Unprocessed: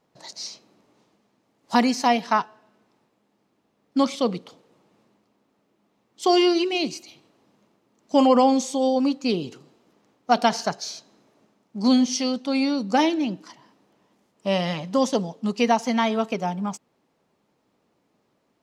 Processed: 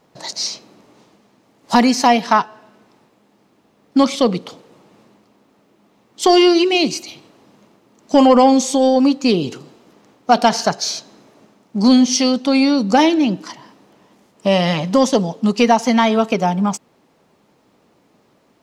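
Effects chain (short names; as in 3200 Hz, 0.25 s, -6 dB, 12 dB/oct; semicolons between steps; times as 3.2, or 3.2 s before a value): in parallel at +2 dB: compressor, threshold -27 dBFS, peak gain reduction 14 dB; on the sum: soft clip -5 dBFS, distortion -24 dB; gain +5 dB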